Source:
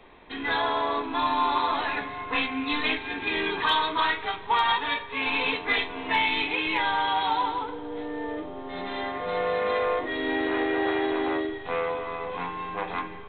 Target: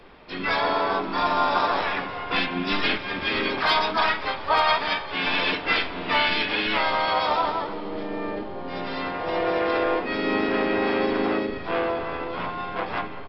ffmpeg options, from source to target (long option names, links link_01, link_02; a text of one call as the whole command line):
ffmpeg -i in.wav -filter_complex "[0:a]asplit=4[link_01][link_02][link_03][link_04];[link_02]asetrate=29433,aresample=44100,atempo=1.49831,volume=-5dB[link_05];[link_03]asetrate=33038,aresample=44100,atempo=1.33484,volume=-11dB[link_06];[link_04]asetrate=58866,aresample=44100,atempo=0.749154,volume=-4dB[link_07];[link_01][link_05][link_06][link_07]amix=inputs=4:normalize=0,asplit=2[link_08][link_09];[link_09]asplit=5[link_10][link_11][link_12][link_13][link_14];[link_10]adelay=388,afreqshift=-81,volume=-18.5dB[link_15];[link_11]adelay=776,afreqshift=-162,volume=-23.4dB[link_16];[link_12]adelay=1164,afreqshift=-243,volume=-28.3dB[link_17];[link_13]adelay=1552,afreqshift=-324,volume=-33.1dB[link_18];[link_14]adelay=1940,afreqshift=-405,volume=-38dB[link_19];[link_15][link_16][link_17][link_18][link_19]amix=inputs=5:normalize=0[link_20];[link_08][link_20]amix=inputs=2:normalize=0" out.wav